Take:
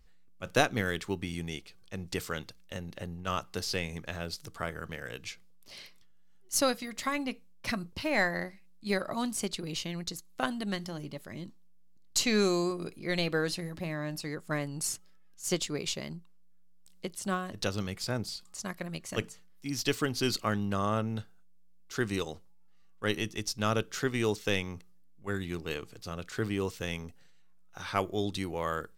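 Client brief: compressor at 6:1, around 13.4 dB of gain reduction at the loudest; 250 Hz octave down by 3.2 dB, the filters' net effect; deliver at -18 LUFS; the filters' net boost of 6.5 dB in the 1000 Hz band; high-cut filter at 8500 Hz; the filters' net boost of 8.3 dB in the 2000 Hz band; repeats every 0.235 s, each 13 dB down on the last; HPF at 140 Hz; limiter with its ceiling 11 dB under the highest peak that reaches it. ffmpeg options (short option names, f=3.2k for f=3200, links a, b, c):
-af "highpass=140,lowpass=8.5k,equalizer=f=250:t=o:g=-4,equalizer=f=1k:t=o:g=6,equalizer=f=2k:t=o:g=8.5,acompressor=threshold=-30dB:ratio=6,alimiter=limit=-24dB:level=0:latency=1,aecho=1:1:235|470|705:0.224|0.0493|0.0108,volume=20dB"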